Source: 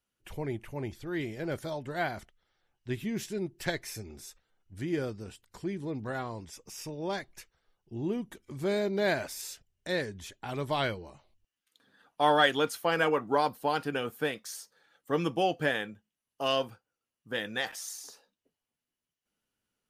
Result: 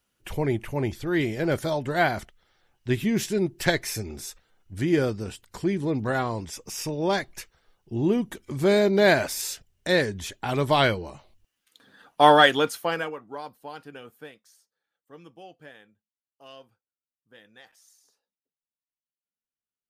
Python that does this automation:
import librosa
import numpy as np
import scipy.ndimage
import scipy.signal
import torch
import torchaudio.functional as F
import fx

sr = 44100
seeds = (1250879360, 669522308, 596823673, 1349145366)

y = fx.gain(x, sr, db=fx.line((12.25, 9.5), (12.93, 1.0), (13.17, -10.5), (14.16, -10.5), (14.58, -18.5)))